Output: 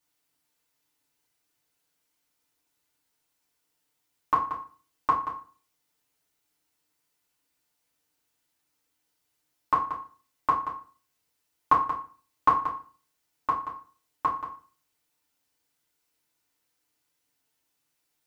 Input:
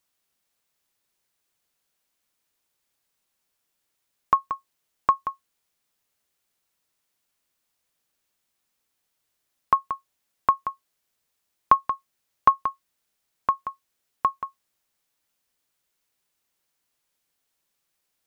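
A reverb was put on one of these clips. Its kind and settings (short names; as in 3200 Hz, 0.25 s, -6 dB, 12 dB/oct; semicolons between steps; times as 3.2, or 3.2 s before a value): FDN reverb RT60 0.4 s, low-frequency decay 1.2×, high-frequency decay 0.85×, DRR -6.5 dB; gain -7 dB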